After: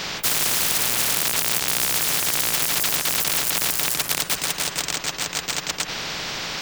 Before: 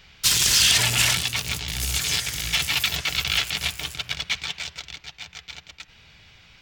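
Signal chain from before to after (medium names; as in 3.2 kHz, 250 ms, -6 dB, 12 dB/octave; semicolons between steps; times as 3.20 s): rattle on loud lows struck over -35 dBFS, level -12 dBFS; resonant low shelf 110 Hz -13 dB, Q 3; spectrum-flattening compressor 10:1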